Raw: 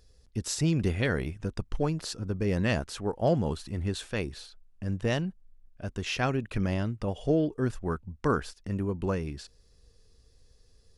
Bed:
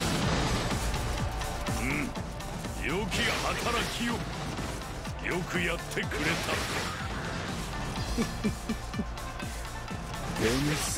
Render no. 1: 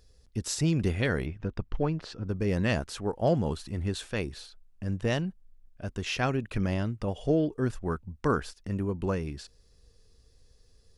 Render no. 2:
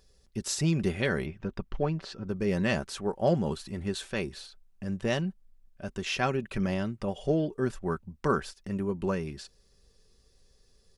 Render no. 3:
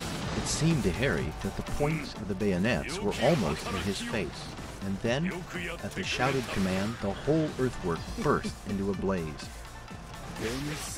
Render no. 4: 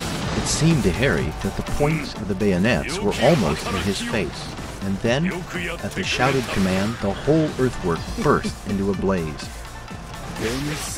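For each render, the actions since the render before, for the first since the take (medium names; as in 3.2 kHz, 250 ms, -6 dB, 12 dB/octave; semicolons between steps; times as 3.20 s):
1.26–2.29 s: low-pass 3.2 kHz
bass shelf 110 Hz -6 dB; comb 5.2 ms, depth 40%
add bed -6 dB
trim +8.5 dB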